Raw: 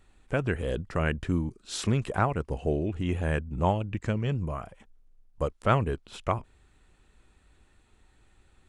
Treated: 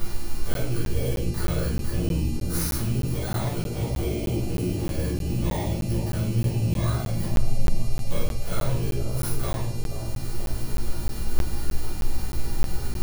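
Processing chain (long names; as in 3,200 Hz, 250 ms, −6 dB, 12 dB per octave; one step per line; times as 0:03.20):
samples in bit-reversed order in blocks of 16 samples
in parallel at +1.5 dB: upward compression, threshold −28 dBFS
on the sum: brickwall limiter −12.5 dBFS, peak gain reduction 10 dB
downward compressor 20 to 1, threshold −34 dBFS, peak gain reduction 17.5 dB
hum with harmonics 400 Hz, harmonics 30, −53 dBFS 0 dB per octave
wave folding −30.5 dBFS
time stretch by overlap-add 1.5×, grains 102 ms
on a send: delay with a low-pass on its return 479 ms, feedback 61%, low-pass 620 Hz, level −3.5 dB
on the sum: rectangular room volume 110 cubic metres, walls mixed, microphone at 2.6 metres
regular buffer underruns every 0.31 s, samples 512, zero, from 0:00.54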